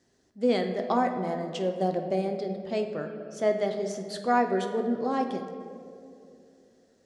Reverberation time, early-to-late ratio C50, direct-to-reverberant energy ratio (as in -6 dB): 2.7 s, 7.0 dB, 4.5 dB